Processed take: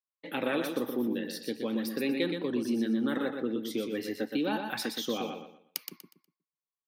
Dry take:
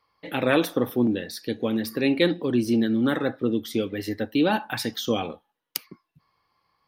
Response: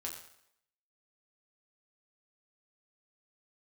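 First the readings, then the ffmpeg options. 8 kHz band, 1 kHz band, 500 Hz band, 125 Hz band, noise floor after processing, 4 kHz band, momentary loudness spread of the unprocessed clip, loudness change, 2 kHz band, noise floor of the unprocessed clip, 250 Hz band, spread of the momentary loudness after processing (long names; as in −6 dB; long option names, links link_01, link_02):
−5.0 dB, −7.5 dB, −7.5 dB, −12.5 dB, below −85 dBFS, −6.0 dB, 10 LU, −7.0 dB, −7.0 dB, −76 dBFS, −7.0 dB, 9 LU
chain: -filter_complex "[0:a]bandreject=frequency=700:width=12,agate=range=-33dB:threshold=-45dB:ratio=3:detection=peak,highpass=frequency=160:width=0.5412,highpass=frequency=160:width=1.3066,acompressor=threshold=-23dB:ratio=3,asplit=2[link_01][link_02];[link_02]aecho=0:1:121|242|363|484:0.501|0.145|0.0421|0.0122[link_03];[link_01][link_03]amix=inputs=2:normalize=0,volume=-5dB"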